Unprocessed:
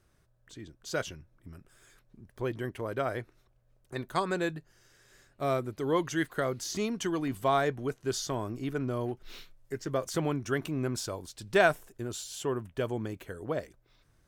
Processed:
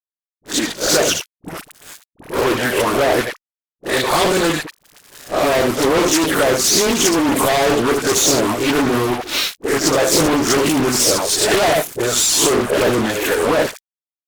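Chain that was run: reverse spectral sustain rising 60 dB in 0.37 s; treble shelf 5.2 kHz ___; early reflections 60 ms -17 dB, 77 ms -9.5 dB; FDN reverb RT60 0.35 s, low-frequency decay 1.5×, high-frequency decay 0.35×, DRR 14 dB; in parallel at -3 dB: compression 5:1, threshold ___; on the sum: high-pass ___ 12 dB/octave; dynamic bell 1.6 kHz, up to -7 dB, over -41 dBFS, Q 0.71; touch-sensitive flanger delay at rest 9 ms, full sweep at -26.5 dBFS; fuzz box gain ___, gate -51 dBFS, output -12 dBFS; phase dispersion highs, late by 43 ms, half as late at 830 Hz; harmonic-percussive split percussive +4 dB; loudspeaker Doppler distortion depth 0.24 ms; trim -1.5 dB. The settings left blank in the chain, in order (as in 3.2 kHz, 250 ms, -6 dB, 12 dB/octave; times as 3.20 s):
+5.5 dB, -39 dBFS, 310 Hz, 43 dB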